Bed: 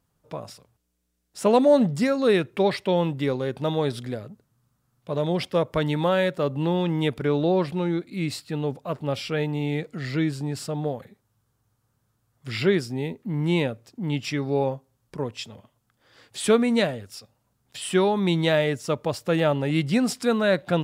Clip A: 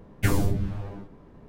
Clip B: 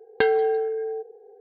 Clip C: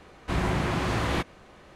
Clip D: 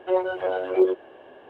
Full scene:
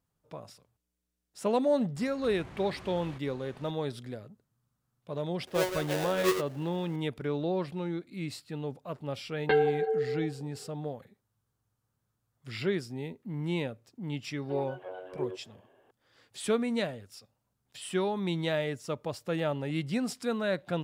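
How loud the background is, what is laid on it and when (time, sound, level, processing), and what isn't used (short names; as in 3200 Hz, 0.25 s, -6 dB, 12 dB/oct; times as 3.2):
bed -9 dB
1.96 add C -3.5 dB + compressor 8:1, threshold -41 dBFS
5.47 add D -11 dB + half-waves squared off
9.29 add B -1.5 dB + ensemble effect
14.42 add D -16 dB
not used: A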